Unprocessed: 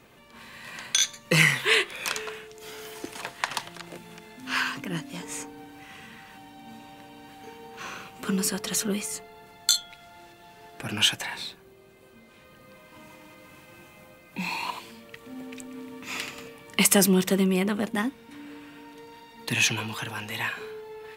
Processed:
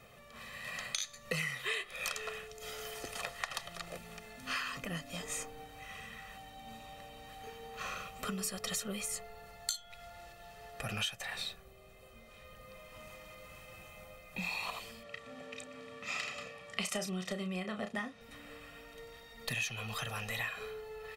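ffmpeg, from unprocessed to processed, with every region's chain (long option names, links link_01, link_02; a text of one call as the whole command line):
ffmpeg -i in.wav -filter_complex "[0:a]asettb=1/sr,asplit=3[link_01][link_02][link_03];[link_01]atrim=end=15.034[link_04];[link_02]atrim=start=15.03:end=18.21,asetpts=PTS-STARTPTS,afade=type=in:duration=0.004:curve=qsin,afade=type=out:start_time=3.176:duration=0.004:curve=qsin,highpass=120,lowpass=6500,bandreject=frequency=470:width=13,asplit=2[link_05][link_06];[link_06]adelay=33,volume=-8dB[link_07];[link_05][link_07]amix=inputs=2:normalize=0,atrim=end_sample=140238[link_08];[link_03]atrim=start=18.206[link_09];[link_04][link_08]acrossfade=duration=0.004:curve1=hsin:curve2=qsin[link_10];[link_10][link_09]acrossfade=duration=0.004:curve1=qsin:curve2=hsin,aecho=1:1:1.6:0.75,acompressor=threshold=-30dB:ratio=6,asubboost=boost=4:cutoff=60,volume=-4dB" out.wav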